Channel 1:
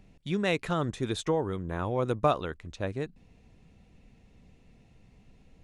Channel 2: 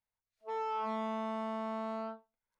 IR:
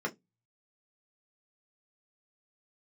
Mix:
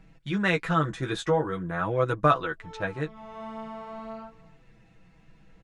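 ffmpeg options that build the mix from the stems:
-filter_complex "[0:a]equalizer=frequency=1500:width_type=o:width=0.89:gain=10,aecho=1:1:6.1:0.68,volume=2.5dB,asplit=2[link_01][link_02];[1:a]adelay=2150,volume=2.5dB,asplit=2[link_03][link_04];[link_04]volume=-19.5dB[link_05];[link_02]apad=whole_len=209061[link_06];[link_03][link_06]sidechaincompress=threshold=-38dB:ratio=8:attack=16:release=324[link_07];[link_05]aecho=0:1:274:1[link_08];[link_01][link_07][link_08]amix=inputs=3:normalize=0,highshelf=frequency=9400:gain=-5.5,flanger=delay=6.2:depth=9.7:regen=-18:speed=0.45:shape=triangular"

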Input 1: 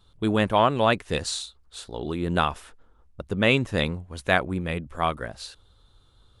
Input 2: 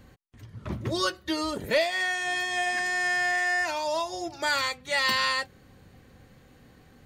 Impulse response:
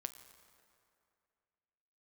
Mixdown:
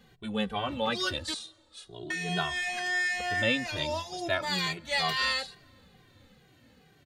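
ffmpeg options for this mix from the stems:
-filter_complex "[0:a]asplit=2[link_01][link_02];[link_02]adelay=2.3,afreqshift=0.4[link_03];[link_01][link_03]amix=inputs=2:normalize=1,volume=-7dB,asplit=3[link_04][link_05][link_06];[link_05]volume=-7.5dB[link_07];[1:a]highpass=79,volume=-3.5dB,asplit=3[link_08][link_09][link_10];[link_08]atrim=end=1.34,asetpts=PTS-STARTPTS,afade=type=out:start_time=1.336:duration=0.004:curve=hsin[link_11];[link_09]atrim=start=1.34:end=2.1,asetpts=PTS-STARTPTS,volume=0[link_12];[link_10]atrim=start=2.1,asetpts=PTS-STARTPTS,afade=type=in:duration=0.004:curve=hsin[link_13];[link_11][link_12][link_13]concat=n=3:v=0:a=1,asplit=2[link_14][link_15];[link_15]volume=-11.5dB[link_16];[link_06]apad=whole_len=311059[link_17];[link_14][link_17]sidechaincompress=threshold=-33dB:ratio=8:attack=8.4:release=248[link_18];[2:a]atrim=start_sample=2205[link_19];[link_07][link_16]amix=inputs=2:normalize=0[link_20];[link_20][link_19]afir=irnorm=-1:irlink=0[link_21];[link_04][link_18][link_21]amix=inputs=3:normalize=0,equalizer=frequency=3400:width_type=o:width=1.2:gain=6.5,bandreject=frequency=1100:width=17,asplit=2[link_22][link_23];[link_23]adelay=2,afreqshift=-2.2[link_24];[link_22][link_24]amix=inputs=2:normalize=1"

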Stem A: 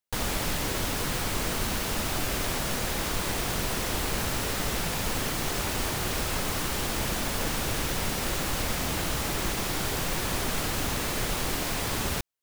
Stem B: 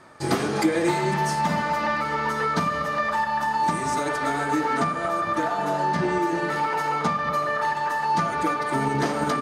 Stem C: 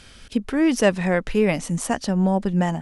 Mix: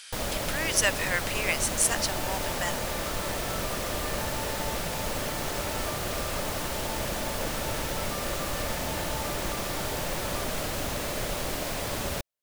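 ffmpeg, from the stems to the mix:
ffmpeg -i stem1.wav -i stem2.wav -i stem3.wav -filter_complex "[0:a]equalizer=frequency=590:width_type=o:width=0.41:gain=8.5,volume=-3dB[link_01];[1:a]highpass=650,adelay=1050,volume=-16.5dB[link_02];[2:a]highpass=1300,highshelf=frequency=5600:gain=10.5,volume=0dB[link_03];[link_01][link_02][link_03]amix=inputs=3:normalize=0" out.wav

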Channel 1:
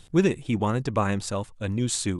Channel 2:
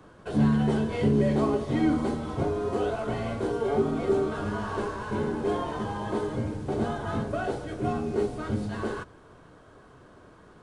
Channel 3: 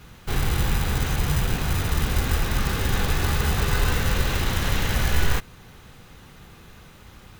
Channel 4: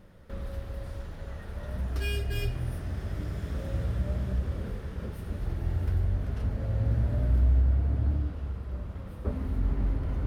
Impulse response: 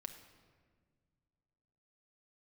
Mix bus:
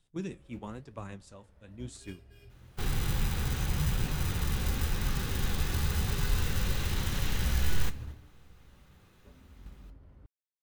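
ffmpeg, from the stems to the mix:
-filter_complex "[0:a]volume=-11.5dB,asplit=2[link_01][link_02];[link_02]volume=-11dB[link_03];[2:a]bandreject=frequency=660:width=12,adelay=2500,volume=-5dB,asplit=2[link_04][link_05];[link_05]volume=-5.5dB[link_06];[3:a]aeval=exprs='sgn(val(0))*max(abs(val(0))-0.00422,0)':channel_layout=same,volume=-12.5dB,asplit=2[link_07][link_08];[link_08]volume=-8.5dB[link_09];[4:a]atrim=start_sample=2205[link_10];[link_03][link_06][link_09]amix=inputs=3:normalize=0[link_11];[link_11][link_10]afir=irnorm=-1:irlink=0[link_12];[link_01][link_04][link_07][link_12]amix=inputs=4:normalize=0,agate=range=-8dB:threshold=-34dB:ratio=16:detection=peak,acrossover=split=280|3000[link_13][link_14][link_15];[link_14]acompressor=threshold=-36dB:ratio=6[link_16];[link_13][link_16][link_15]amix=inputs=3:normalize=0,flanger=delay=7:depth=9.2:regen=-63:speed=0.97:shape=sinusoidal"

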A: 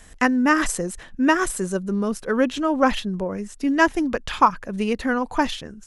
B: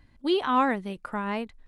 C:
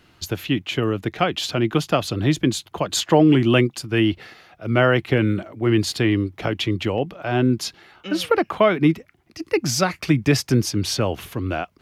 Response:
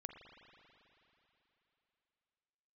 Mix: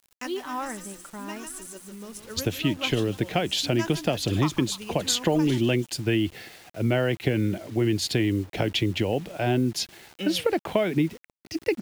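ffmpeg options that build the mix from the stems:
-filter_complex "[0:a]bandreject=frequency=91.7:width_type=h:width=4,bandreject=frequency=183.4:width_type=h:width=4,bandreject=frequency=275.1:width_type=h:width=4,aexciter=amount=3.9:drive=3.5:freq=2500,volume=-17.5dB,asplit=2[link_01][link_02];[link_02]volume=-11dB[link_03];[1:a]agate=range=-33dB:threshold=-53dB:ratio=3:detection=peak,aecho=1:1:5.2:0.4,volume=-9.5dB,asplit=2[link_04][link_05];[2:a]equalizer=frequency=1200:width=2.6:gain=-13,acompressor=threshold=-22dB:ratio=4,adelay=2150,volume=1.5dB[link_06];[link_05]apad=whole_len=258648[link_07];[link_01][link_07]sidechaincompress=threshold=-38dB:ratio=8:attack=16:release=1150[link_08];[link_03]aecho=0:1:149|298|447|596|745|894:1|0.46|0.212|0.0973|0.0448|0.0206[link_09];[link_08][link_04][link_06][link_09]amix=inputs=4:normalize=0,acrusher=bits=7:mix=0:aa=0.000001"

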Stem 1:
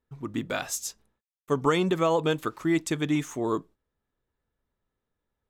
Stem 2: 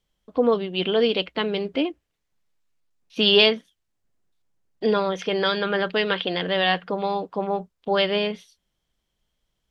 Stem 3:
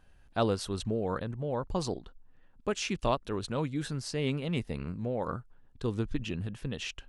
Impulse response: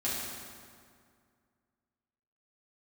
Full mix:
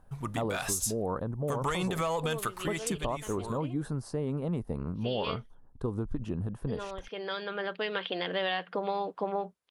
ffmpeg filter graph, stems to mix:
-filter_complex "[0:a]equalizer=frequency=310:width_type=o:width=0.96:gain=-13.5,aeval=exprs='0.211*sin(PI/2*1.41*val(0)/0.211)':channel_layout=same,volume=-1dB,afade=type=out:start_time=2.3:duration=0.67:silence=0.251189[link_01];[1:a]highpass=frequency=320:poles=1,highshelf=frequency=5400:gain=-10.5,adelay=1850,volume=-1dB[link_02];[2:a]highshelf=frequency=1600:width_type=q:width=1.5:gain=-14,volume=2.5dB,asplit=2[link_03][link_04];[link_04]apad=whole_len=509479[link_05];[link_02][link_05]sidechaincompress=threshold=-46dB:ratio=3:attack=8.5:release=1460[link_06];[link_01][link_03]amix=inputs=2:normalize=0,alimiter=limit=-20dB:level=0:latency=1:release=72,volume=0dB[link_07];[link_06][link_07]amix=inputs=2:normalize=0,equalizer=frequency=10000:width=2:gain=12,acompressor=threshold=-27dB:ratio=6"

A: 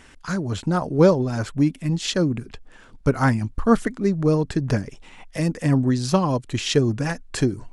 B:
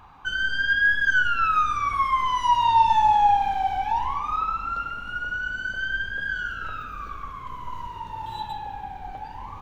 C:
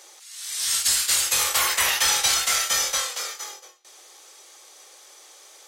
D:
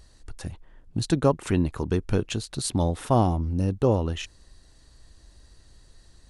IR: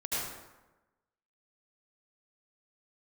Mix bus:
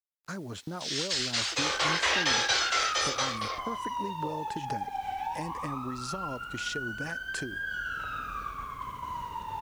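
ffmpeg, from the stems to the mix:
-filter_complex "[0:a]highpass=frequency=260:poles=1,acompressor=threshold=-20dB:ratio=6,volume=-7dB,asplit=2[link_01][link_02];[1:a]highpass=frequency=72:poles=1,highshelf=frequency=4900:gain=6.5,acompressor=threshold=-29dB:ratio=6,adelay=1350,volume=-3.5dB,asplit=2[link_03][link_04];[link_04]volume=-9dB[link_05];[2:a]afwtdn=0.0224,lowpass=frequency=5400:width=0.5412,lowpass=frequency=5400:width=1.3066,equalizer=frequency=350:width_type=o:width=1.7:gain=8.5,adelay=250,volume=-4dB[link_06];[3:a]highpass=frequency=510:width=0.5412,highpass=frequency=510:width=1.3066,alimiter=limit=-21.5dB:level=0:latency=1,adelay=400,volume=-14dB[link_07];[link_02]apad=whole_len=483524[link_08];[link_03][link_08]sidechaincompress=threshold=-50dB:ratio=3:attack=16:release=191[link_09];[link_01][link_09]amix=inputs=2:normalize=0,agate=range=-25dB:threshold=-40dB:ratio=16:detection=peak,acompressor=threshold=-34dB:ratio=6,volume=0dB[link_10];[4:a]atrim=start_sample=2205[link_11];[link_05][link_11]afir=irnorm=-1:irlink=0[link_12];[link_06][link_07][link_10][link_12]amix=inputs=4:normalize=0,acrusher=bits=9:mix=0:aa=0.000001"

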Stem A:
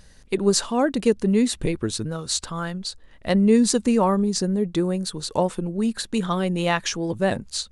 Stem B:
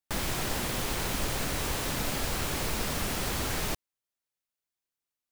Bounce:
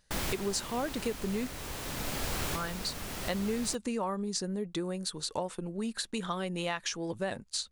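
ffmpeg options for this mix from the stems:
ffmpeg -i stem1.wav -i stem2.wav -filter_complex "[0:a]lowshelf=frequency=470:gain=-8,acompressor=threshold=-27dB:ratio=4,volume=-3.5dB,asplit=3[link_01][link_02][link_03];[link_01]atrim=end=1.47,asetpts=PTS-STARTPTS,afade=type=out:start_time=1.466:duration=0.004:curve=hsin[link_04];[link_02]atrim=start=1.47:end=2.55,asetpts=PTS-STARTPTS,volume=0[link_05];[link_03]atrim=start=2.55,asetpts=PTS-STARTPTS,afade=type=in:duration=0.004:curve=hsin[link_06];[link_04][link_05][link_06]concat=n=3:v=0:a=1,asplit=2[link_07][link_08];[1:a]volume=-2dB[link_09];[link_08]apad=whole_len=234509[link_10];[link_09][link_10]sidechaincompress=threshold=-41dB:ratio=3:attack=16:release=1000[link_11];[link_07][link_11]amix=inputs=2:normalize=0,agate=range=-11dB:threshold=-43dB:ratio=16:detection=peak" out.wav

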